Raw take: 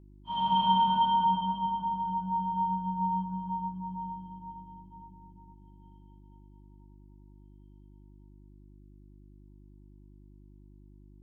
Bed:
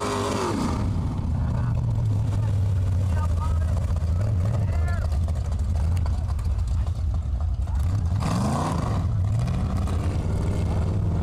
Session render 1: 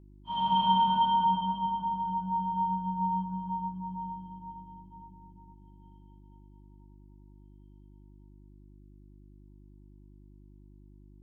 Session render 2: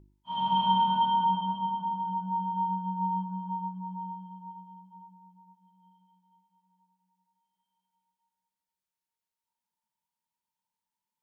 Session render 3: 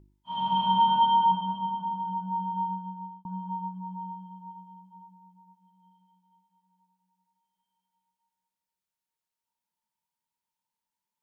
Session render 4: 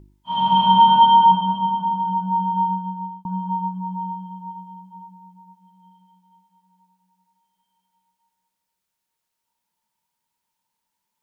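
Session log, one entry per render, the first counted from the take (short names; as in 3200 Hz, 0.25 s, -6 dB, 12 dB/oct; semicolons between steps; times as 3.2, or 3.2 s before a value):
nothing audible
de-hum 50 Hz, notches 12
0.77–1.32 doubler 14 ms -4.5 dB; 2.59–3.25 fade out
gain +9.5 dB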